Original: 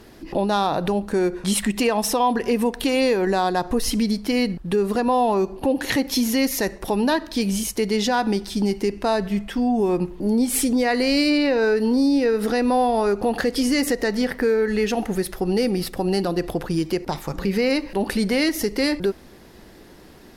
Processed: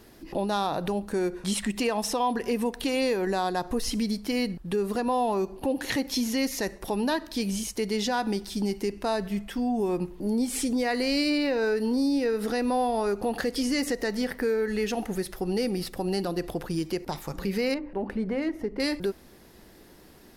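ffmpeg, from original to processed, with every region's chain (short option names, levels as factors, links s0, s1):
-filter_complex "[0:a]asettb=1/sr,asplit=3[s0][s1][s2];[s0]atrim=end=17.744[s3];[s1]atrim=start=17.74:end=18.8,asetpts=PTS-STARTPTS,afade=t=in:d=0.004:c=qsin,afade=t=out:st=1.056:d=0.004:c=qsin,equalizer=f=4900:w=0.58:g=-13,bandreject=f=50:t=h:w=6,bandreject=f=100:t=h:w=6,bandreject=f=150:t=h:w=6,bandreject=f=200:t=h:w=6,bandreject=f=250:t=h:w=6,bandreject=f=300:t=h:w=6,bandreject=f=350:t=h:w=6,adynamicsmooth=sensitivity=1:basefreq=2700[s4];[s2]atrim=start=18.796[s5];[s3][s4]acrossfade=d=0.004:c1=hsin:c2=qsin[s6];[s6][s5]acrossfade=d=0.004:c1=qsin:c2=hsin,acrossover=split=8400[s7][s8];[s8]acompressor=threshold=0.00631:ratio=4:attack=1:release=60[s9];[s7][s9]amix=inputs=2:normalize=0,highshelf=f=9000:g=9,volume=0.473"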